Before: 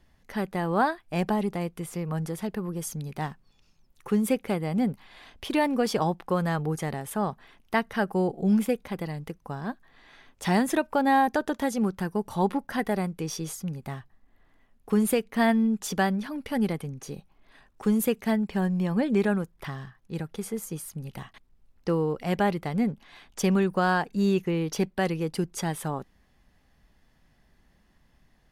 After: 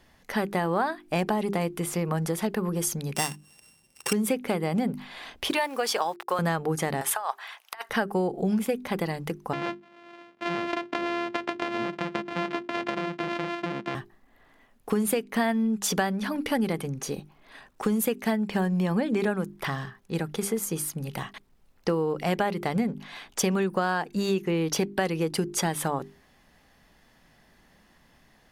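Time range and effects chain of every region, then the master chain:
3.15–4.13 sample sorter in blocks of 16 samples + HPF 56 Hz + bell 8600 Hz +11.5 dB 1.4 oct
5.51–6.39 Bessel high-pass 760 Hz + requantised 10-bit, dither none
7.01–7.9 HPF 740 Hz 24 dB/oct + negative-ratio compressor -36 dBFS, ratio -0.5
9.53–13.95 sample sorter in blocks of 128 samples + Chebyshev band-pass 190–2600 Hz + compressor, threshold -30 dBFS
whole clip: low shelf 120 Hz -11.5 dB; notches 50/100/150/200/250/300/350/400 Hz; compressor 6:1, threshold -31 dBFS; gain +8.5 dB

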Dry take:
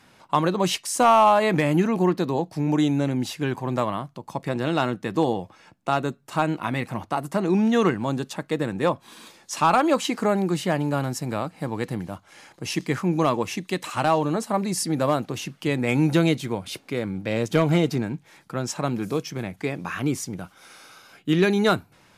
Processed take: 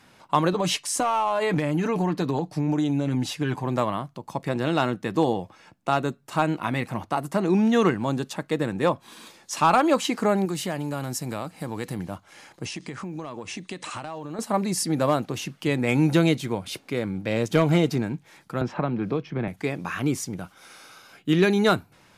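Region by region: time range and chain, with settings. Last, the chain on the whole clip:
0.52–3.64 LPF 12000 Hz + comb 6.8 ms, depth 55% + compressor 12:1, threshold -19 dBFS
10.45–11.99 high shelf 4900 Hz +8 dB + compressor 2:1, threshold -28 dBFS
12.65–14.39 steep low-pass 10000 Hz 96 dB/oct + short-mantissa float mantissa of 6-bit + compressor 12:1, threshold -30 dBFS
18.61–19.48 air absorption 350 m + three-band squash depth 100%
whole clip: dry

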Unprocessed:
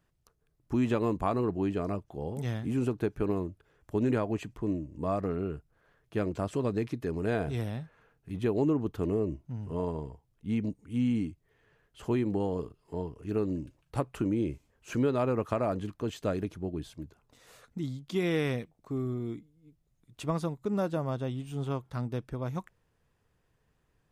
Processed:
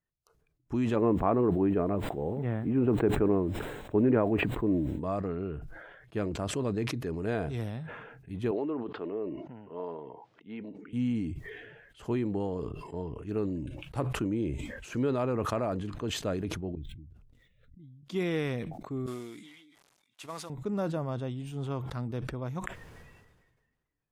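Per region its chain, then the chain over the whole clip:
0.95–4.99 LPF 2400 Hz 24 dB/oct + added noise pink -66 dBFS + bell 410 Hz +6 dB 2.8 oct
8.51–10.93 HPF 380 Hz + air absorption 190 m
16.75–18.03 median filter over 9 samples + passive tone stack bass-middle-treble 10-0-1 + backwards sustainer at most 64 dB/s
19.06–20.5 CVSD 64 kbps + HPF 1400 Hz 6 dB/oct
whole clip: spectral noise reduction 15 dB; high shelf 7200 Hz -4.5 dB; sustainer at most 40 dB/s; gain -2 dB

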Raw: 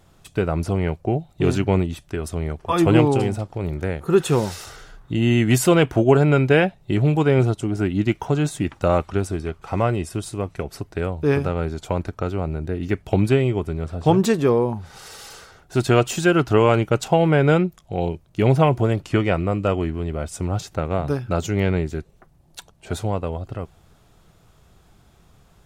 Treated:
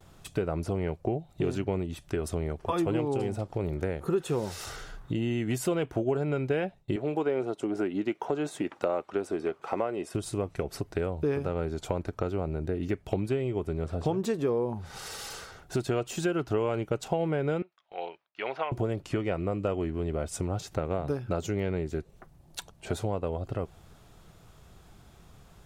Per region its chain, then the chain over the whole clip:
6.96–10.15 HPF 310 Hz + high shelf 3600 Hz -8.5 dB
17.62–18.72 HPF 1200 Hz + air absorption 300 m
whole clip: compressor 5:1, threshold -30 dBFS; gate with hold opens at -49 dBFS; dynamic EQ 450 Hz, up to +5 dB, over -42 dBFS, Q 0.96

